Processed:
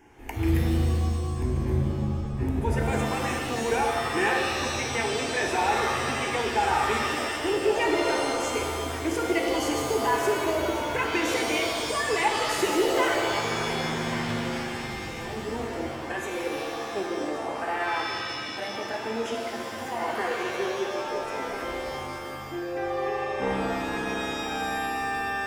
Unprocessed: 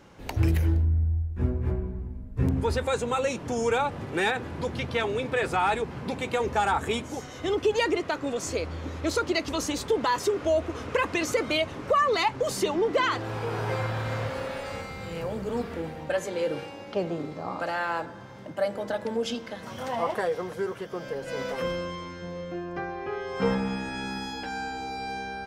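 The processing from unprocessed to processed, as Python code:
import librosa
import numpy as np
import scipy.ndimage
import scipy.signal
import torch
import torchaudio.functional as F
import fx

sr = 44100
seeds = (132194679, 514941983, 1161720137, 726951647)

y = fx.fixed_phaser(x, sr, hz=830.0, stages=8)
y = y + 10.0 ** (-15.5 / 20.0) * np.pad(y, (int(1129 * sr / 1000.0), 0))[:len(y)]
y = fx.rev_shimmer(y, sr, seeds[0], rt60_s=2.0, semitones=7, shimmer_db=-2, drr_db=1.0)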